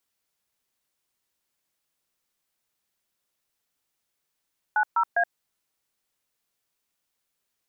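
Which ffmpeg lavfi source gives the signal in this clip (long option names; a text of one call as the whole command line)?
ffmpeg -f lavfi -i "aevalsrc='0.0841*clip(min(mod(t,0.202),0.073-mod(t,0.202))/0.002,0,1)*(eq(floor(t/0.202),0)*(sin(2*PI*852*mod(t,0.202))+sin(2*PI*1477*mod(t,0.202)))+eq(floor(t/0.202),1)*(sin(2*PI*941*mod(t,0.202))+sin(2*PI*1336*mod(t,0.202)))+eq(floor(t/0.202),2)*(sin(2*PI*697*mod(t,0.202))+sin(2*PI*1633*mod(t,0.202))))':duration=0.606:sample_rate=44100" out.wav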